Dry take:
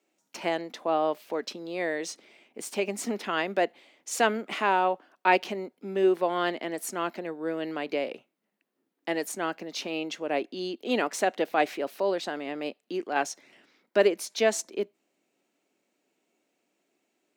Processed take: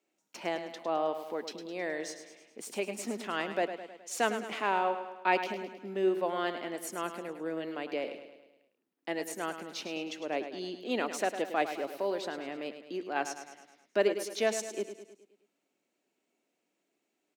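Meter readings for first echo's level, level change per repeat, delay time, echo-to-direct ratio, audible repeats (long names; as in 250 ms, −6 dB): −10.0 dB, −5.5 dB, 105 ms, −8.5 dB, 5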